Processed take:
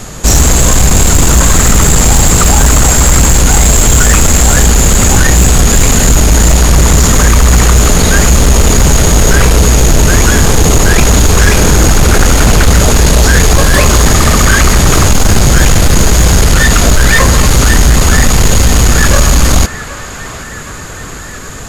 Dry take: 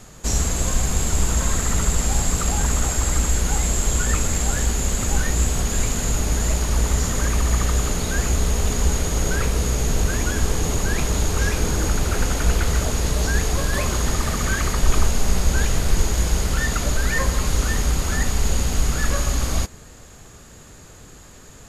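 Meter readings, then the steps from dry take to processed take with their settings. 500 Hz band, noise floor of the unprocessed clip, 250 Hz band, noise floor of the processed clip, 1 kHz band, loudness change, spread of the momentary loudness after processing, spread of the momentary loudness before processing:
+15.0 dB, −44 dBFS, +15.5 dB, −24 dBFS, +15.5 dB, +15.0 dB, 2 LU, 2 LU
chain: on a send: feedback echo with a band-pass in the loop 769 ms, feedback 72%, band-pass 1,500 Hz, level −15 dB
on the sum: sine wavefolder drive 13 dB, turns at −3 dBFS
level +1.5 dB

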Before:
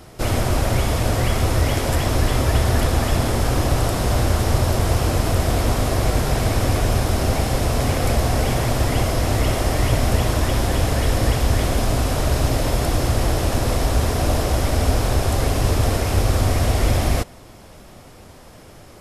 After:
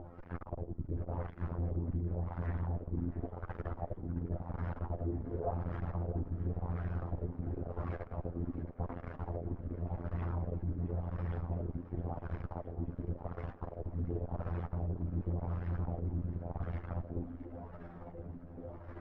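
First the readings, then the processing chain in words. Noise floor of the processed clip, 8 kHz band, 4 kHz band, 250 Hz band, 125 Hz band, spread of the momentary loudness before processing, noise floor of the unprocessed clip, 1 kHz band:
−50 dBFS, below −40 dB, below −40 dB, −16.5 dB, −17.5 dB, 2 LU, −43 dBFS, −22.5 dB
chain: gain on a spectral selection 0:05.27–0:05.52, 350–1,800 Hz +10 dB
spectral tilt −1.5 dB per octave
reversed playback
downward compressor 8 to 1, threshold −24 dBFS, peak gain reduction 17.5 dB
reversed playback
flanger 0.23 Hz, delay 3.3 ms, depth 7.9 ms, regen +51%
phases set to zero 85.9 Hz
tube saturation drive 40 dB, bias 0.5
auto-filter low-pass sine 0.91 Hz 280–1,700 Hz
on a send: feedback echo with a high-pass in the loop 667 ms, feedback 82%, high-pass 280 Hz, level −15 dB
on the sum: level +8 dB

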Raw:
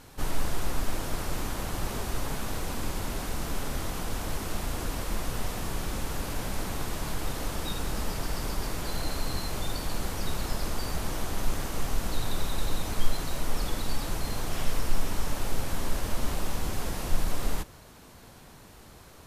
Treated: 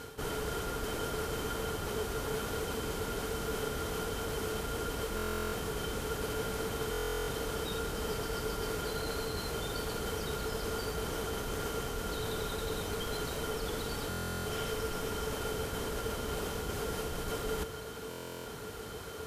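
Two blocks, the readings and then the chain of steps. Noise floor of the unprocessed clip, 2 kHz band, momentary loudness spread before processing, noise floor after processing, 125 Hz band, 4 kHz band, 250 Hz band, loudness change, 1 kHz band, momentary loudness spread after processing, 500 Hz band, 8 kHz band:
−50 dBFS, −1.0 dB, 1 LU, −43 dBFS, −5.0 dB, −1.5 dB, −3.0 dB, −2.0 dB, −1.5 dB, 1 LU, +4.0 dB, −3.5 dB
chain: high-pass filter 47 Hz 12 dB per octave
reversed playback
downward compressor 6 to 1, threshold −41 dBFS, peak gain reduction 11.5 dB
reversed playback
hollow resonant body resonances 440/1,400/3,100 Hz, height 16 dB, ringing for 85 ms
buffer that repeats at 0:05.16/0:06.91/0:14.09/0:18.09, samples 1,024, times 15
level +5.5 dB

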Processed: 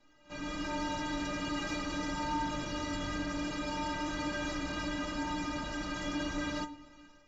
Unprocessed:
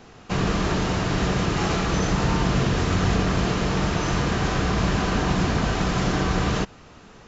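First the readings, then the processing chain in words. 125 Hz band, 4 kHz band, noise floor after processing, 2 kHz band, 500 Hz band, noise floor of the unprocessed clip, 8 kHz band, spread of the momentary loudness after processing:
−22.0 dB, −10.5 dB, −61 dBFS, −10.0 dB, −14.5 dB, −47 dBFS, can't be measured, 3 LU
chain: automatic gain control gain up to 9 dB
stiff-string resonator 290 Hz, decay 0.22 s, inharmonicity 0.008
rectangular room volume 2,500 cubic metres, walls furnished, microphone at 0.62 metres
in parallel at −7.5 dB: soft clipping −32.5 dBFS, distortion −9 dB
on the sum: backwards echo 61 ms −19 dB
level −7.5 dB

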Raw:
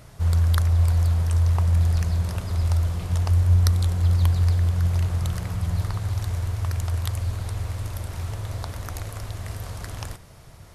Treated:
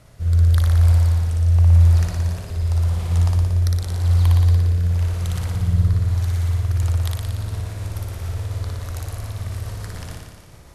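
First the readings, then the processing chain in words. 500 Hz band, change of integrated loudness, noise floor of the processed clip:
+1.5 dB, +4.0 dB, −42 dBFS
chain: rotating-speaker cabinet horn 0.9 Hz, later 7 Hz, at 0:06.40
flutter between parallel walls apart 10 metres, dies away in 1.4 s

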